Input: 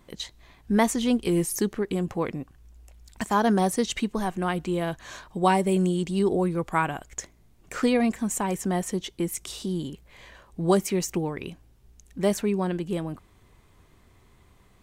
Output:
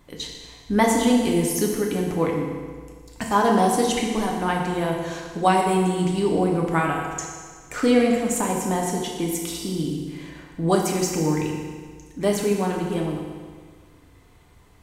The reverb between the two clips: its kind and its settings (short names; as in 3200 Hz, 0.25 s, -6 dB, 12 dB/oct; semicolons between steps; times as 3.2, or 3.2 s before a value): FDN reverb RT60 1.7 s, low-frequency decay 0.95×, high-frequency decay 0.9×, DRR -1 dB; gain +1 dB